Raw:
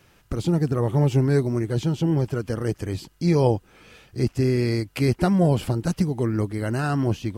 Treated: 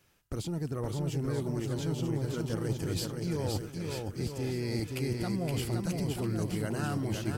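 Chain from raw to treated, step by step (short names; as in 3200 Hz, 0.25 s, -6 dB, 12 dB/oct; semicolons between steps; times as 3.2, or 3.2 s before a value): in parallel at -3.5 dB: soft clip -17.5 dBFS, distortion -14 dB; on the sum: limiter -12 dBFS, peak gain reduction 5.5 dB; reverse; compressor 10:1, threshold -28 dBFS, peak gain reduction 13.5 dB; reverse; high shelf 4800 Hz +8 dB; gate -43 dBFS, range -14 dB; bouncing-ball echo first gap 0.52 s, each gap 0.8×, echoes 5; gain -3 dB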